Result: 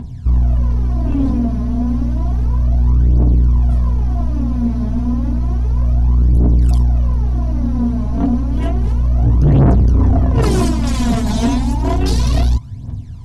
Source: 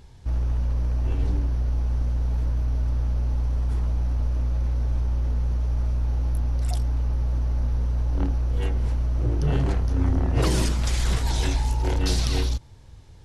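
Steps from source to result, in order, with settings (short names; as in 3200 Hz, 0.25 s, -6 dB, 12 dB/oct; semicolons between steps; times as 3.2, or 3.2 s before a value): bell 120 Hz +12 dB 1.7 oct; phaser 0.31 Hz, delay 4.8 ms, feedback 73%; small resonant body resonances 240/690/1000 Hz, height 15 dB, ringing for 60 ms; soft clip -8.5 dBFS, distortion -9 dB; gain +1.5 dB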